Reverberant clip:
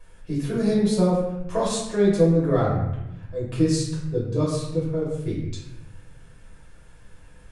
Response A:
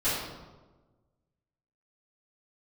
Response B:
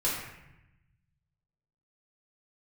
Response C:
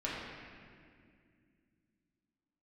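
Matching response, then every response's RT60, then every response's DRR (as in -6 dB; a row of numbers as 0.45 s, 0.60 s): B; 1.2 s, 0.90 s, 2.2 s; -16.0 dB, -8.0 dB, -7.5 dB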